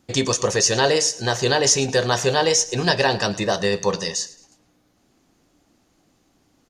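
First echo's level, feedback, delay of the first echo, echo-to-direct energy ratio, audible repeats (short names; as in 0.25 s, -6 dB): -19.0 dB, 36%, 0.109 s, -18.5 dB, 2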